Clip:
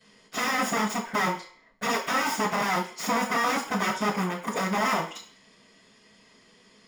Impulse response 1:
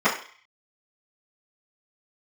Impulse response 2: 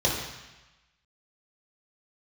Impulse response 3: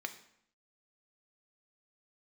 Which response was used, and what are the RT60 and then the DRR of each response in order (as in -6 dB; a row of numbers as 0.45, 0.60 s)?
1; 0.45, 1.1, 0.70 s; -16.5, -4.0, 6.5 dB